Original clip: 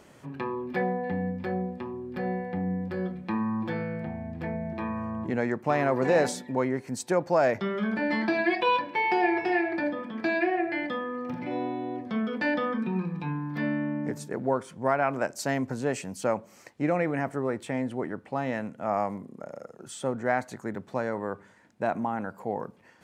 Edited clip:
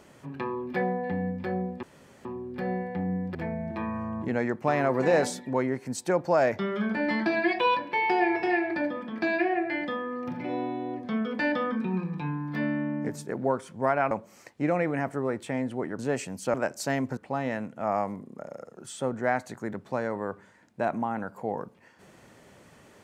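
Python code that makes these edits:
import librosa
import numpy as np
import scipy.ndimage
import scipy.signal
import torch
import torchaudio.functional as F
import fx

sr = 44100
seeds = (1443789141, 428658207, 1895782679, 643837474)

y = fx.edit(x, sr, fx.insert_room_tone(at_s=1.83, length_s=0.42),
    fx.cut(start_s=2.93, length_s=1.44),
    fx.swap(start_s=15.13, length_s=0.63, other_s=16.31, other_length_s=1.88), tone=tone)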